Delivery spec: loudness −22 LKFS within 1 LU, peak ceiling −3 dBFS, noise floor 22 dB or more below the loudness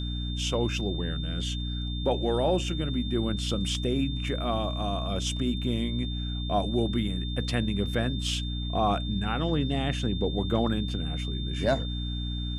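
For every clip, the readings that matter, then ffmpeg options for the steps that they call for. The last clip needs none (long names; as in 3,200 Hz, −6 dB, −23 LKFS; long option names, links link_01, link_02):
mains hum 60 Hz; hum harmonics up to 300 Hz; level of the hum −29 dBFS; interfering tone 3,600 Hz; level of the tone −38 dBFS; integrated loudness −29.0 LKFS; sample peak −13.5 dBFS; target loudness −22.0 LKFS
→ -af "bandreject=frequency=60:width_type=h:width=4,bandreject=frequency=120:width_type=h:width=4,bandreject=frequency=180:width_type=h:width=4,bandreject=frequency=240:width_type=h:width=4,bandreject=frequency=300:width_type=h:width=4"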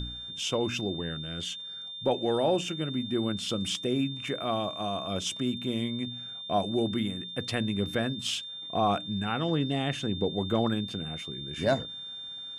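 mains hum none found; interfering tone 3,600 Hz; level of the tone −38 dBFS
→ -af "bandreject=frequency=3600:width=30"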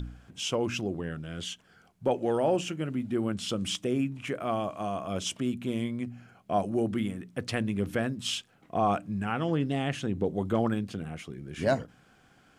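interfering tone none found; integrated loudness −31.0 LKFS; sample peak −15.0 dBFS; target loudness −22.0 LKFS
→ -af "volume=9dB"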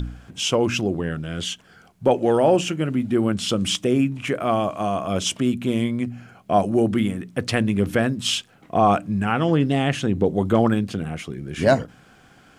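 integrated loudness −22.0 LKFS; sample peak −6.0 dBFS; background noise floor −53 dBFS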